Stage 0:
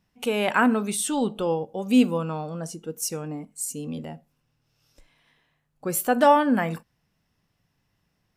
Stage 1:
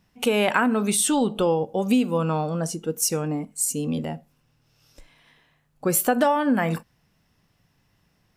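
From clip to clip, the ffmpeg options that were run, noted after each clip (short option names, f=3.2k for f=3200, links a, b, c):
-af "acompressor=threshold=-23dB:ratio=12,volume=6.5dB"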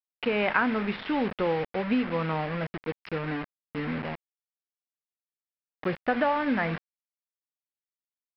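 -af "aresample=11025,acrusher=bits=4:mix=0:aa=0.000001,aresample=44100,lowpass=f=2.1k:t=q:w=1.8,volume=-6dB"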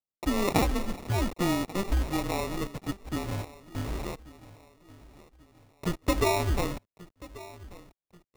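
-af "highpass=f=180:t=q:w=0.5412,highpass=f=180:t=q:w=1.307,lowpass=f=2.4k:t=q:w=0.5176,lowpass=f=2.4k:t=q:w=0.7071,lowpass=f=2.4k:t=q:w=1.932,afreqshift=-190,aecho=1:1:1136|2272|3408:0.112|0.0471|0.0198,acrusher=samples=28:mix=1:aa=0.000001"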